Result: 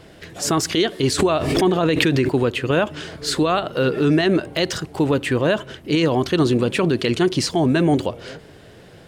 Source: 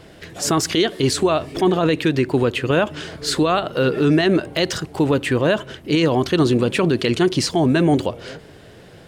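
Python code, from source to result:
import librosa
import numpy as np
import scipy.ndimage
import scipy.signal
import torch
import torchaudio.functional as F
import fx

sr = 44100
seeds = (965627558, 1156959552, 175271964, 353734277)

y = fx.pre_swell(x, sr, db_per_s=36.0, at=(1.18, 2.28), fade=0.02)
y = y * 10.0 ** (-1.0 / 20.0)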